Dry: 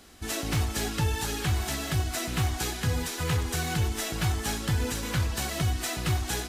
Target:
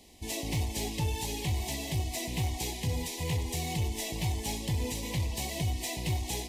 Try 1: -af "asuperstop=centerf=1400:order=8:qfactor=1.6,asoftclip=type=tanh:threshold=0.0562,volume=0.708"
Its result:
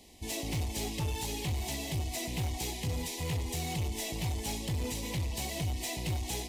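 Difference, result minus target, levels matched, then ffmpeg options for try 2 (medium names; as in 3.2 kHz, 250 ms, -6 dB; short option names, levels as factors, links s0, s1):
saturation: distortion +10 dB
-af "asuperstop=centerf=1400:order=8:qfactor=1.6,asoftclip=type=tanh:threshold=0.126,volume=0.708"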